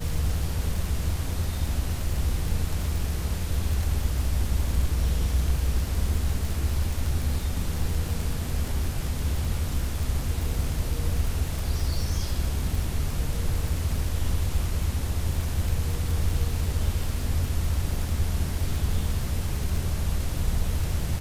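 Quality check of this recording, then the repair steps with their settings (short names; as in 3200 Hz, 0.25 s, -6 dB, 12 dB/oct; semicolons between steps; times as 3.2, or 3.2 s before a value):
crackle 42/s -28 dBFS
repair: de-click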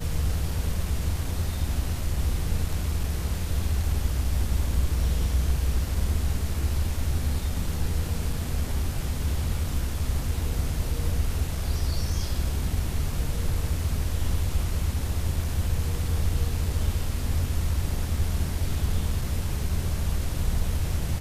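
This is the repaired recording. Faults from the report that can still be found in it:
none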